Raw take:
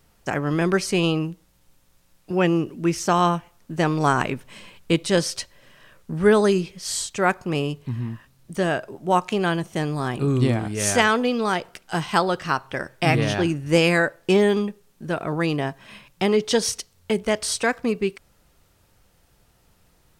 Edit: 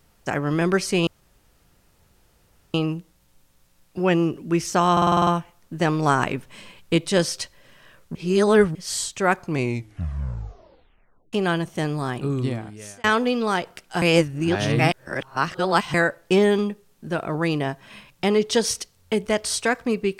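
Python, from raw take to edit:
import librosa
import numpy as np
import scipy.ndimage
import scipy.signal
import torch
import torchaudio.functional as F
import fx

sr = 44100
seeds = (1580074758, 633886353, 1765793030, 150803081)

y = fx.edit(x, sr, fx.insert_room_tone(at_s=1.07, length_s=1.67),
    fx.stutter(start_s=3.25, slice_s=0.05, count=8),
    fx.reverse_span(start_s=6.13, length_s=0.6),
    fx.tape_stop(start_s=7.36, length_s=1.95),
    fx.fade_out_span(start_s=9.93, length_s=1.09),
    fx.reverse_span(start_s=12.0, length_s=1.92), tone=tone)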